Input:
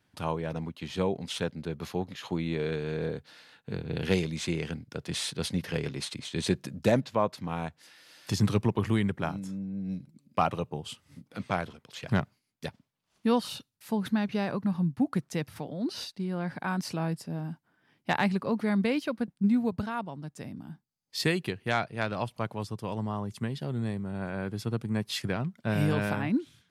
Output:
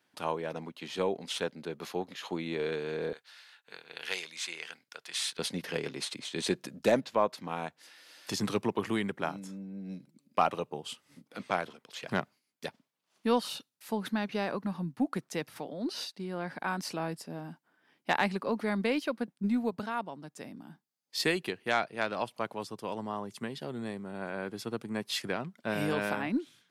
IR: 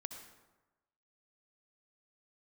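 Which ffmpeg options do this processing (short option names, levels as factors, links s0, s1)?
-af "asetnsamples=n=441:p=0,asendcmd='3.13 highpass f 1100;5.39 highpass f 270',highpass=290,aeval=exprs='0.299*(cos(1*acos(clip(val(0)/0.299,-1,1)))-cos(1*PI/2))+0.00188*(cos(8*acos(clip(val(0)/0.299,-1,1)))-cos(8*PI/2))':c=same"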